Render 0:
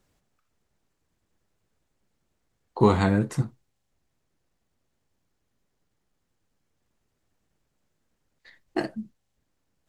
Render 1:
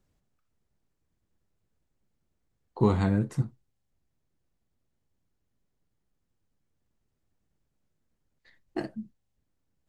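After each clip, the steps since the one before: bass shelf 310 Hz +8 dB; trim -8.5 dB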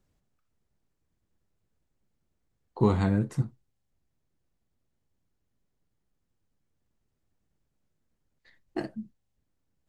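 no audible change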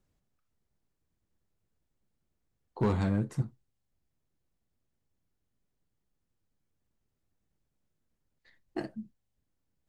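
hard clipper -18.5 dBFS, distortion -14 dB; trim -3 dB

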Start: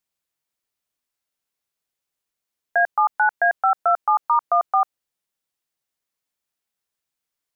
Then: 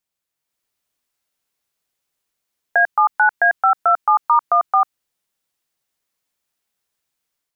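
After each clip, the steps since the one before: dynamic bell 570 Hz, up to -7 dB, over -33 dBFS, Q 1.3; level rider gain up to 6 dB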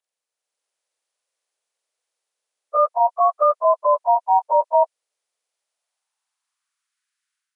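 frequency axis rescaled in octaves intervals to 84%; high-pass sweep 510 Hz -> 1.5 kHz, 5.49–7.00 s; trim -4 dB

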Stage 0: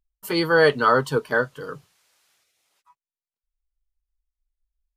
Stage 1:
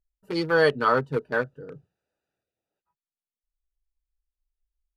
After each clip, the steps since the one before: local Wiener filter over 41 samples; trim -3 dB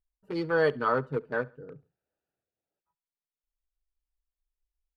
treble shelf 3.3 kHz -11.5 dB; feedback delay 69 ms, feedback 39%, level -24 dB; trim -4 dB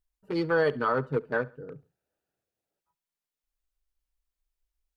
peak limiter -19.5 dBFS, peak gain reduction 5.5 dB; trim +3 dB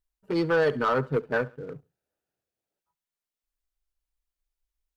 waveshaping leveller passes 1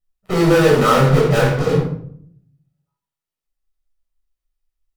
in parallel at -6 dB: fuzz box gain 48 dB, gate -52 dBFS; on the sum: simulated room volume 970 m³, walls furnished, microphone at 6.4 m; trim -6 dB

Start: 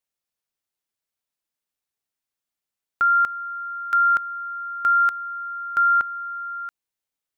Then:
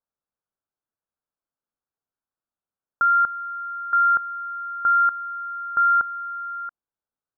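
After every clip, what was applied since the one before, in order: steep low-pass 1.6 kHz 72 dB/octave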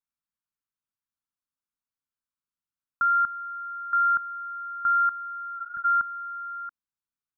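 high-order bell 530 Hz -15 dB 1.3 oct; spectral replace 5.60–5.82 s, 240–1500 Hz before; trim -4 dB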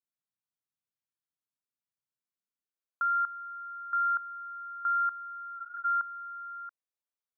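high-pass sweep 120 Hz -> 500 Hz, 2.21–2.83 s; trim -7 dB

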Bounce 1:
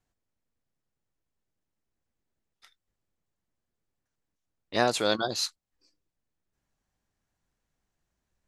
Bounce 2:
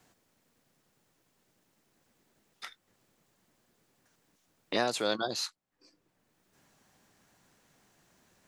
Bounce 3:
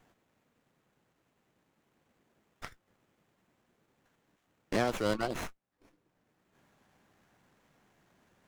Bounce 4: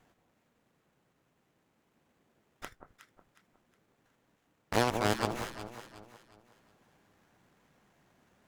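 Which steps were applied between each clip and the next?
three bands compressed up and down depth 70%; trim -3.5 dB
sliding maximum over 9 samples
Chebyshev shaper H 3 -14 dB, 7 -17 dB, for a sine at -16 dBFS; echo whose repeats swap between lows and highs 182 ms, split 1.2 kHz, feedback 60%, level -6.5 dB; trim +4.5 dB

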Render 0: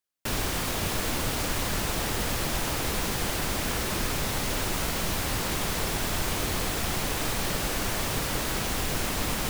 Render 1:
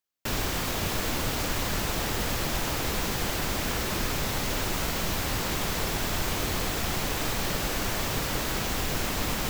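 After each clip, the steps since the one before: peaking EQ 9.5 kHz -8.5 dB 0.2 oct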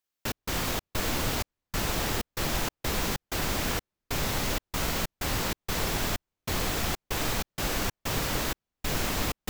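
trance gate "xx.xx.xxx..xxx." 95 bpm -60 dB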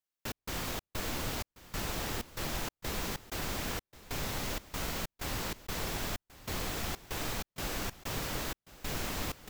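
delay 1086 ms -18 dB; trim -7 dB

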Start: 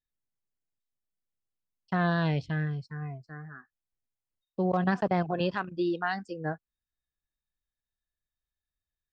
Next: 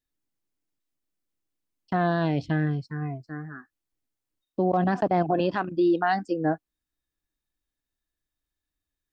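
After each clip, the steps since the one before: peaking EQ 300 Hz +11.5 dB 0.54 oct; peak limiter -20 dBFS, peak gain reduction 7 dB; dynamic bell 710 Hz, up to +7 dB, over -47 dBFS, Q 2.1; trim +4 dB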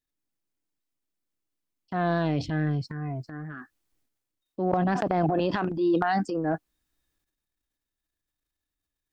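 transient shaper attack -5 dB, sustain +10 dB; trim -1.5 dB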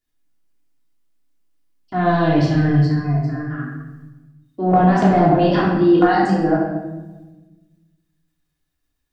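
simulated room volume 680 m³, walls mixed, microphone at 3.2 m; trim +1.5 dB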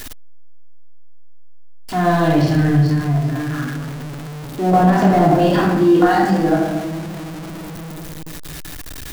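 jump at every zero crossing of -25 dBFS

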